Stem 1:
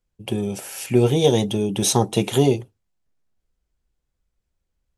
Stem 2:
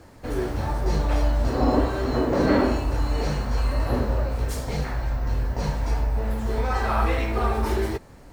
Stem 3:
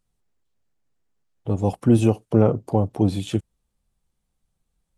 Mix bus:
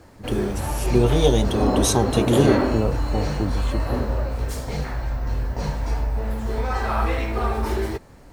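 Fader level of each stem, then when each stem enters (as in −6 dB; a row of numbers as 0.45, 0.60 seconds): −2.0, 0.0, −6.0 decibels; 0.00, 0.00, 0.40 seconds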